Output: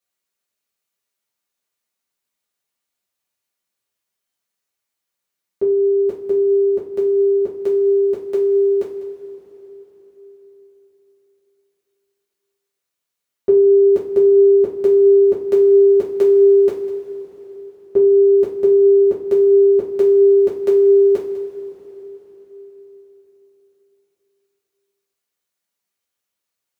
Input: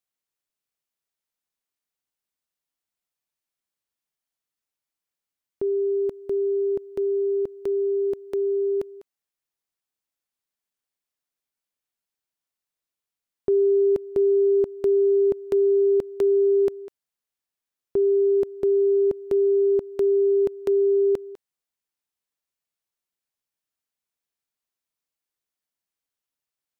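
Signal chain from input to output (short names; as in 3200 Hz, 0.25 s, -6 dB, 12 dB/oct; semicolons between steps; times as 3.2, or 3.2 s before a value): HPF 61 Hz; two-slope reverb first 0.32 s, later 4.3 s, from -19 dB, DRR -7 dB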